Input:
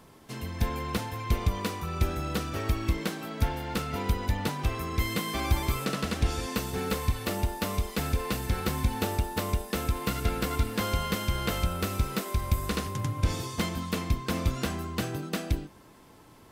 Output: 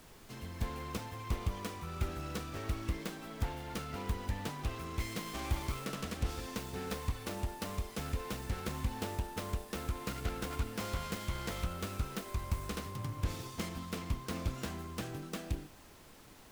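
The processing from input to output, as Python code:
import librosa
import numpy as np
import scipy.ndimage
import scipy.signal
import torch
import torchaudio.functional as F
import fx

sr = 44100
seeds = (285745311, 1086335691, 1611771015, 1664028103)

y = fx.self_delay(x, sr, depth_ms=0.38)
y = fx.dmg_noise_colour(y, sr, seeds[0], colour='pink', level_db=-49.0)
y = F.gain(torch.from_numpy(y), -8.5).numpy()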